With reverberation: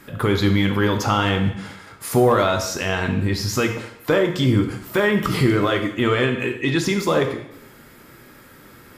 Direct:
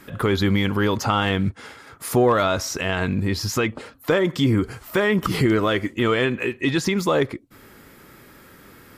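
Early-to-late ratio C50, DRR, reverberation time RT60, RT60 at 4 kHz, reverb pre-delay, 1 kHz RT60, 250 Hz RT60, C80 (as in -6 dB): 8.0 dB, 4.5 dB, 0.80 s, 0.75 s, 4 ms, 0.80 s, 0.80 s, 10.5 dB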